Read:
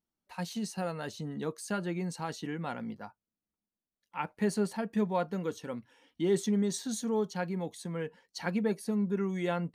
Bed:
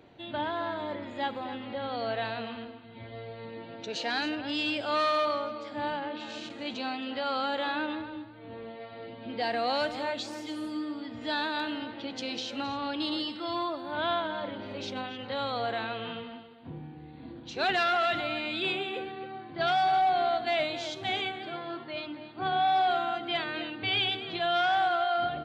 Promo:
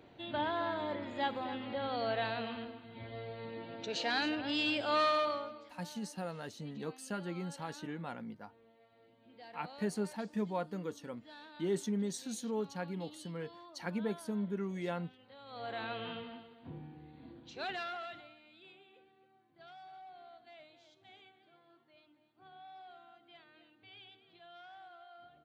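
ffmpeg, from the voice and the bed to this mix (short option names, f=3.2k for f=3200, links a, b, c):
-filter_complex "[0:a]adelay=5400,volume=-6dB[a];[1:a]volume=15dB,afade=t=out:st=5.03:d=0.74:silence=0.1,afade=t=in:st=15.45:d=0.47:silence=0.133352,afade=t=out:st=16.65:d=1.71:silence=0.0707946[b];[a][b]amix=inputs=2:normalize=0"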